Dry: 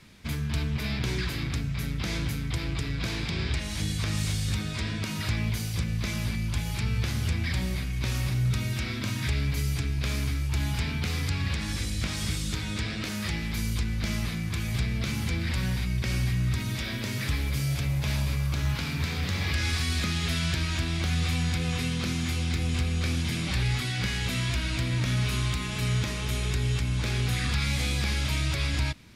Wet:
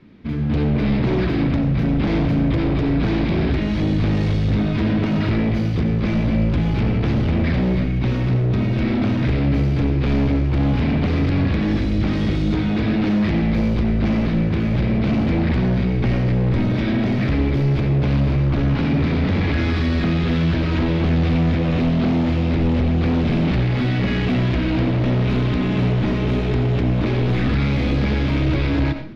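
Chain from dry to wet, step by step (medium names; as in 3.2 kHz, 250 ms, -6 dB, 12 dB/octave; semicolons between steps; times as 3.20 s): peaking EQ 290 Hz +14 dB 1.8 oct; level rider gain up to 11.5 dB; hard clipper -14 dBFS, distortion -10 dB; distance through air 290 m; on a send: reverberation RT60 0.35 s, pre-delay 50 ms, DRR 8 dB; on the sum: trim -1.5 dB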